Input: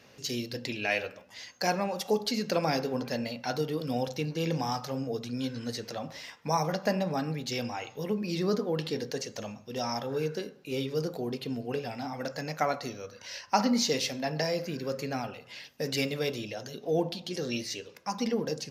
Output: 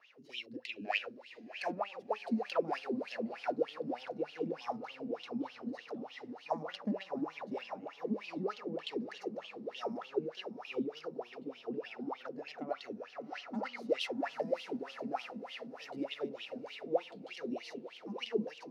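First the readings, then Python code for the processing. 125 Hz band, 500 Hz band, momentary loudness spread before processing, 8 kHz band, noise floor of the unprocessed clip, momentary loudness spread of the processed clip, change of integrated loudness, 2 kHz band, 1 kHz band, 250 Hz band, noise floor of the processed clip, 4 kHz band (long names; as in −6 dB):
−17.0 dB, −6.5 dB, 9 LU, below −20 dB, −55 dBFS, 9 LU, −8.0 dB, −7.0 dB, −8.0 dB, −7.5 dB, −56 dBFS, −10.0 dB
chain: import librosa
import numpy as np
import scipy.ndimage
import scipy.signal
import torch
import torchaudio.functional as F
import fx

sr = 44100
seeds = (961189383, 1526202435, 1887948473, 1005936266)

p1 = fx.self_delay(x, sr, depth_ms=0.14)
p2 = fx.bass_treble(p1, sr, bass_db=-5, treble_db=2)
p3 = p2 + fx.echo_diffused(p2, sr, ms=693, feedback_pct=65, wet_db=-9.5, dry=0)
p4 = fx.wah_lfo(p3, sr, hz=3.3, low_hz=210.0, high_hz=3200.0, q=9.0)
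p5 = fx.notch(p4, sr, hz=1600.0, q=20.0)
y = p5 * 10.0 ** (6.5 / 20.0)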